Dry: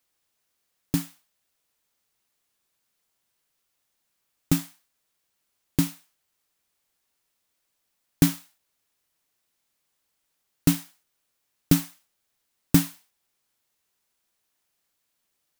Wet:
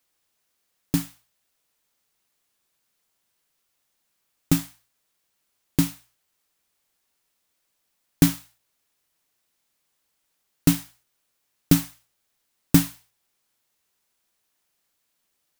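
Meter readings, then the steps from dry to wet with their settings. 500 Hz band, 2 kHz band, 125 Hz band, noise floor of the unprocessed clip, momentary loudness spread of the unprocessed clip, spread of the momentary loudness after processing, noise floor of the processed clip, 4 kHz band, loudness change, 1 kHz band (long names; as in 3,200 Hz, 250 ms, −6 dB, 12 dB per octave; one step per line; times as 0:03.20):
+2.0 dB, +2.0 dB, +2.0 dB, −77 dBFS, 16 LU, 16 LU, −75 dBFS, +2.0 dB, +2.0 dB, +2.0 dB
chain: mains-hum notches 60/120 Hz
level +2 dB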